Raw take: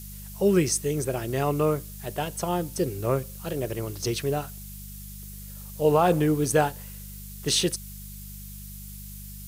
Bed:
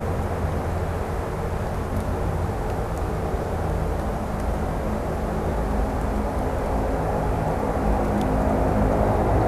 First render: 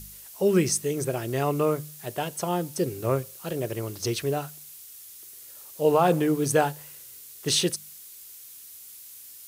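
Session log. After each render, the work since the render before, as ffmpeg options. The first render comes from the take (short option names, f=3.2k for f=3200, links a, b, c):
-af "bandreject=f=50:t=h:w=4,bandreject=f=100:t=h:w=4,bandreject=f=150:t=h:w=4,bandreject=f=200:t=h:w=4"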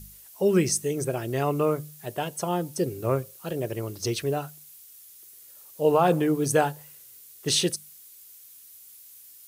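-af "afftdn=nr=6:nf=-46"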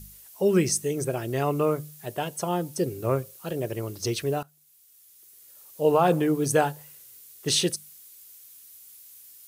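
-filter_complex "[0:a]asplit=2[a][b];[a]atrim=end=4.43,asetpts=PTS-STARTPTS,afade=t=out:st=4.426:d=0.004:c=hsin:silence=0.105925[c];[b]atrim=start=4.43,asetpts=PTS-STARTPTS,afade=t=in:d=1.38:silence=0.105925[d];[c][d]concat=n=2:v=0:a=1"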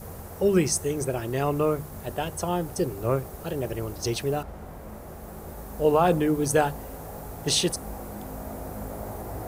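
-filter_complex "[1:a]volume=-15.5dB[a];[0:a][a]amix=inputs=2:normalize=0"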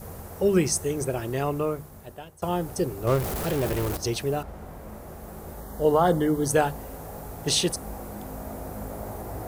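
-filter_complex "[0:a]asettb=1/sr,asplit=3[a][b][c];[a]atrim=end=3.074[d];[b]atrim=start=3.07:end=3.97,asetpts=PTS-STARTPTS,afade=t=in:d=0.004:c=qsin,afade=t=out:st=0.896:d=0.004:c=qsin,aeval=exprs='val(0)+0.5*0.0473*sgn(val(0))':c=same[e];[c]atrim=start=3.966[f];[d][e]acrossfade=d=0.004:c1=hsin:c2=qsin[g];[g][f]acrossfade=d=0.004:c1=qsin:c2=hsin,asettb=1/sr,asplit=3[h][i][j];[h]atrim=end=5.604[k];[i]atrim=start=5.6:end=6.49,asetpts=PTS-STARTPTS,afade=t=in:d=0.004:c=qsin,afade=t=out:st=0.886:d=0.004:c=qsin,asuperstop=centerf=2500:order=20:qfactor=4[l];[j]atrim=start=6.486[m];[k][l]acrossfade=d=0.004:c1=hsin:c2=qsin[n];[n][m]acrossfade=d=0.004:c1=qsin:c2=hsin,asplit=2[o][p];[o]atrim=end=2.42,asetpts=PTS-STARTPTS,afade=t=out:st=1.27:d=1.15:silence=0.0891251[q];[p]atrim=start=2.42,asetpts=PTS-STARTPTS,afade=t=in:d=0.004:c=hsin:silence=0.0891251[r];[q][r]concat=n=2:v=0:a=1"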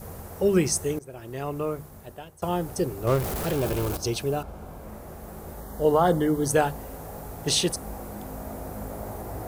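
-filter_complex "[0:a]asettb=1/sr,asplit=3[a][b][c];[a]atrim=end=3.534[d];[b]atrim=start=3.53:end=4.83,asetpts=PTS-STARTPTS,afade=t=in:d=0.004:c=qsin,afade=t=out:st=1.296:d=0.004:c=qsin,bandreject=f=1.9k:w=6[e];[c]atrim=start=4.826[f];[d][e]acrossfade=d=0.004:c1=hsin:c2=qsin[g];[g][f]acrossfade=d=0.004:c1=qsin:c2=hsin,asplit=2[h][i];[h]atrim=end=0.99,asetpts=PTS-STARTPTS,afade=t=out:st=0.986:d=0.004:c=hsin:silence=0.0841395[j];[i]atrim=start=0.99,asetpts=PTS-STARTPTS,afade=t=in:d=0.86:silence=0.0841395[k];[j][k]concat=n=2:v=0:a=1"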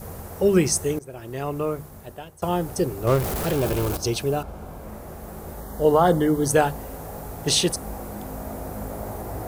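-af "volume=3dB"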